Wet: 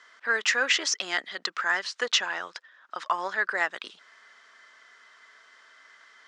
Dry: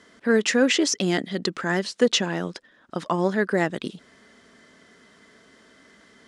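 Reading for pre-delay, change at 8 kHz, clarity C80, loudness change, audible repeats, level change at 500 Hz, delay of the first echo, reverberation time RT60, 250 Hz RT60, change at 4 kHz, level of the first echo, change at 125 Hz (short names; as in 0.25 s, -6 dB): none, -2.5 dB, none, -3.5 dB, none, -12.5 dB, none, none, none, -1.0 dB, none, under -30 dB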